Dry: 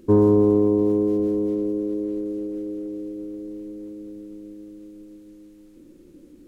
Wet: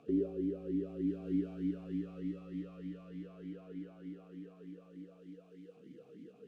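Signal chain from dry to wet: G.711 law mismatch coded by mu; limiter -17.5 dBFS, peak gain reduction 10.5 dB; frequency shift -490 Hz; low shelf 390 Hz -3.5 dB; vowel sweep a-i 3.3 Hz; gain +6 dB

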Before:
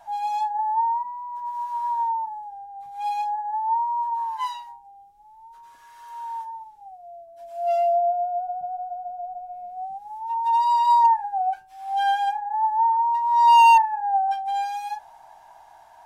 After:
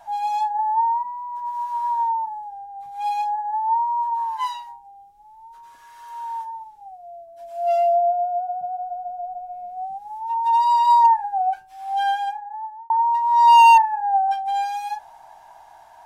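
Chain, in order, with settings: 8.19–8.82 HPF 73 Hz 24 dB/oct; 11.82–12.9 fade out; gain +2.5 dB

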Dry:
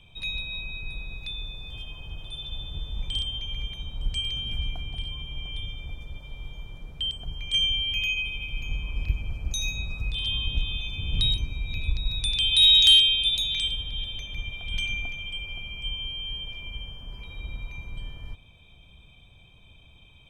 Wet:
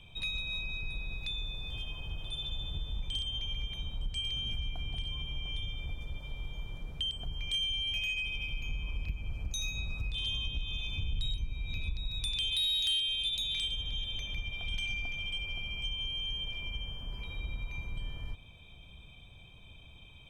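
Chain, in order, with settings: 10.97–11.54 low shelf 60 Hz +9.5 dB; compressor 3:1, threshold -32 dBFS, peak gain reduction 14 dB; soft clip -23.5 dBFS, distortion -23 dB

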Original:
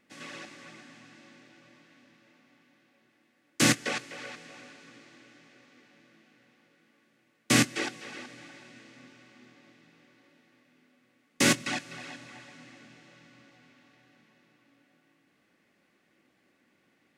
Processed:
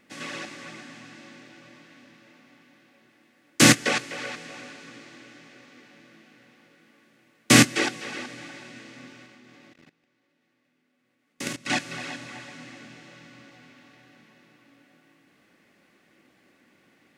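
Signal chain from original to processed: 9.26–11.7 level quantiser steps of 20 dB; gain +7.5 dB

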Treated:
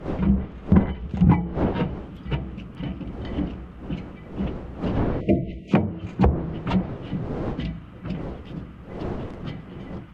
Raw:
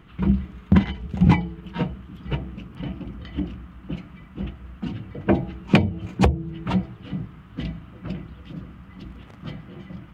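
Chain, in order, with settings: wind noise 370 Hz -33 dBFS; treble ducked by the level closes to 1400 Hz, closed at -14 dBFS; 5.61–6.04 HPF 150 Hz 6 dB/oct; in parallel at -11 dB: overloaded stage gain 21 dB; 5.21–5.72 on the sum: spectral delete 690–1900 Hz; gain -1.5 dB

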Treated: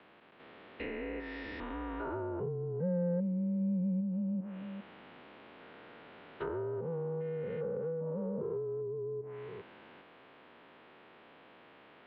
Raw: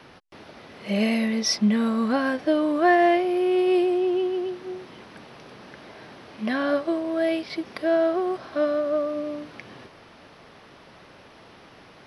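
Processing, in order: stepped spectrum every 0.4 s; mistuned SSB -170 Hz 390–3600 Hz; treble ducked by the level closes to 330 Hz, closed at -24.5 dBFS; gain -5.5 dB

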